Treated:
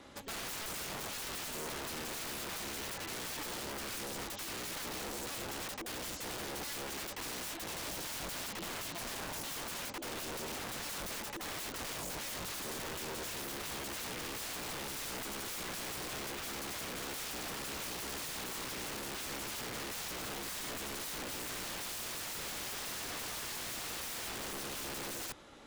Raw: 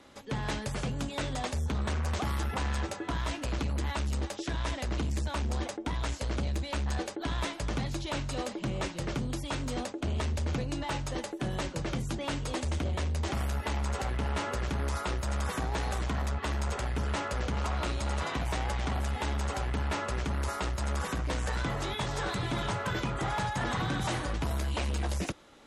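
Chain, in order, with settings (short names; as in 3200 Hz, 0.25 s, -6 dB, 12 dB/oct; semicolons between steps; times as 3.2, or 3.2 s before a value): limiter -26 dBFS, peak gain reduction 3.5 dB; wrapped overs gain 37.5 dB; gain +1 dB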